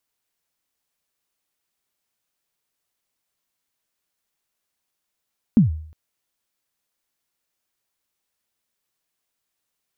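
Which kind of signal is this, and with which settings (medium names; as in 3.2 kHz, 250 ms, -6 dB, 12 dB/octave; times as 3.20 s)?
kick drum length 0.36 s, from 250 Hz, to 78 Hz, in 132 ms, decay 0.57 s, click off, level -7 dB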